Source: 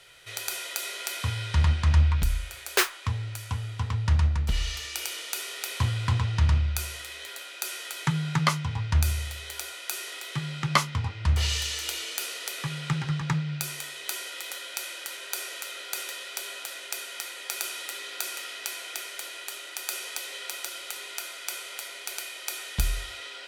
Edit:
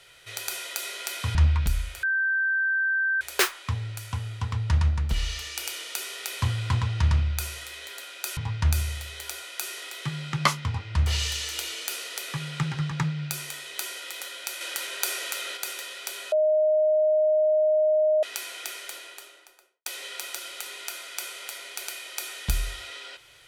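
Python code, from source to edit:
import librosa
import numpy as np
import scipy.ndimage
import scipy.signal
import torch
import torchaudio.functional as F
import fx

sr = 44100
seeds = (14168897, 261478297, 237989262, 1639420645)

y = fx.studio_fade_out(x, sr, start_s=19.08, length_s=1.08)
y = fx.edit(y, sr, fx.cut(start_s=1.35, length_s=0.56),
    fx.insert_tone(at_s=2.59, length_s=1.18, hz=1560.0, db=-21.5),
    fx.cut(start_s=7.75, length_s=0.92),
    fx.clip_gain(start_s=14.91, length_s=0.96, db=5.0),
    fx.bleep(start_s=16.62, length_s=1.91, hz=618.0, db=-18.0), tone=tone)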